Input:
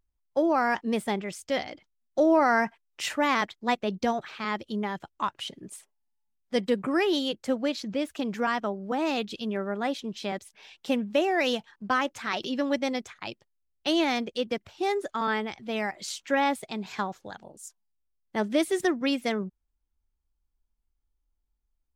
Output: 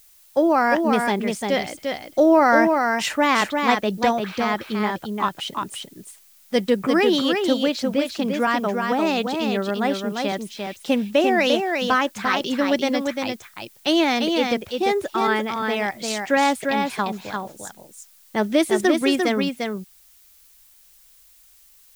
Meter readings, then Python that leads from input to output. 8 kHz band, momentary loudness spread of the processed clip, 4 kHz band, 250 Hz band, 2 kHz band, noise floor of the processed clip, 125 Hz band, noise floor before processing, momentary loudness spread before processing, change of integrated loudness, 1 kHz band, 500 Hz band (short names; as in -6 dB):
+7.5 dB, 11 LU, +7.5 dB, +7.5 dB, +7.5 dB, -53 dBFS, +7.5 dB, -77 dBFS, 11 LU, +7.0 dB, +7.5 dB, +7.5 dB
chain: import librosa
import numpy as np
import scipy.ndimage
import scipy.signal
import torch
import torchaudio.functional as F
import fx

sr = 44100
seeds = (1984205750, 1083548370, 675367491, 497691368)

y = x + 10.0 ** (-4.5 / 20.0) * np.pad(x, (int(347 * sr / 1000.0), 0))[:len(x)]
y = fx.dmg_noise_colour(y, sr, seeds[0], colour='blue', level_db=-59.0)
y = F.gain(torch.from_numpy(y), 6.0).numpy()